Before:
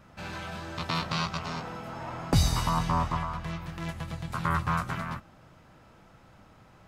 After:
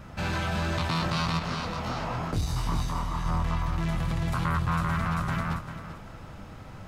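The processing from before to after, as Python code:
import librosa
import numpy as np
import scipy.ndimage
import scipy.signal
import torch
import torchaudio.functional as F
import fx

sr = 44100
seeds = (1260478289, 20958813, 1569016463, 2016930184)

p1 = fx.low_shelf(x, sr, hz=120.0, db=8.0)
p2 = fx.echo_feedback(p1, sr, ms=392, feedback_pct=23, wet_db=-4.5)
p3 = fx.over_compress(p2, sr, threshold_db=-34.0, ratio=-1.0)
p4 = p2 + (p3 * 10.0 ** (-0.5 / 20.0))
p5 = 10.0 ** (-17.0 / 20.0) * np.tanh(p4 / 10.0 ** (-17.0 / 20.0))
p6 = fx.detune_double(p5, sr, cents=53, at=(1.39, 3.26))
y = p6 * 10.0 ** (-1.5 / 20.0)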